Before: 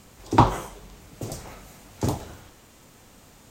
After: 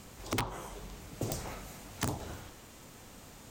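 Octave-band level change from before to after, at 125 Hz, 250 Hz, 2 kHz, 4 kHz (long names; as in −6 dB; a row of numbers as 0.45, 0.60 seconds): −12.0, −12.0, −4.0, −3.5 decibels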